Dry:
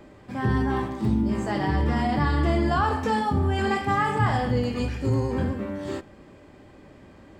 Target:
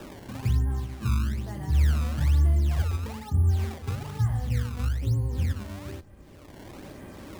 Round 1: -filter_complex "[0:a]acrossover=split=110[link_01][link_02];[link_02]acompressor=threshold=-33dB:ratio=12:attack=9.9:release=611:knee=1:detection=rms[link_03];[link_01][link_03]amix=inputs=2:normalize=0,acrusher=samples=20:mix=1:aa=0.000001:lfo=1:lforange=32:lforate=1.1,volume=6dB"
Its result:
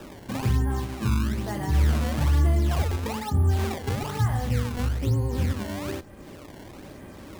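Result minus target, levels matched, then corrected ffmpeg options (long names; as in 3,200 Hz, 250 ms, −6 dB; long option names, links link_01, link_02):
downward compressor: peak gain reduction −9.5 dB
-filter_complex "[0:a]acrossover=split=110[link_01][link_02];[link_02]acompressor=threshold=-43.5dB:ratio=12:attack=9.9:release=611:knee=1:detection=rms[link_03];[link_01][link_03]amix=inputs=2:normalize=0,acrusher=samples=20:mix=1:aa=0.000001:lfo=1:lforange=32:lforate=1.1,volume=6dB"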